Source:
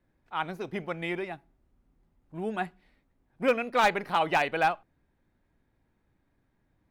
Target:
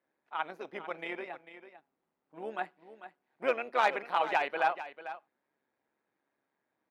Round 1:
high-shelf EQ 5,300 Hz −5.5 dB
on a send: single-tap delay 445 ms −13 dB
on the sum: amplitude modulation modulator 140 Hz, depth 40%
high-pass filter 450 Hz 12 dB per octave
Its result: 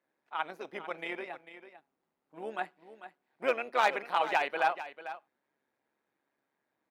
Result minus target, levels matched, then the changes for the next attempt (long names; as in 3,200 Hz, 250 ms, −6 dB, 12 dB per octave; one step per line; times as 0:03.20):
8,000 Hz band +4.5 dB
change: high-shelf EQ 5,300 Hz −13.5 dB